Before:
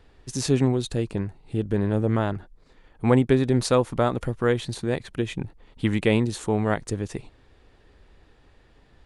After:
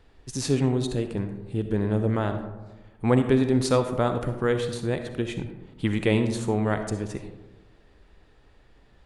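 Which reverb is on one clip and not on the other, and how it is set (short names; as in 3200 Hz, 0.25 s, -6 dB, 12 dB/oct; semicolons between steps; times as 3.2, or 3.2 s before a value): digital reverb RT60 1.2 s, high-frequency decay 0.35×, pre-delay 20 ms, DRR 7.5 dB; gain -2 dB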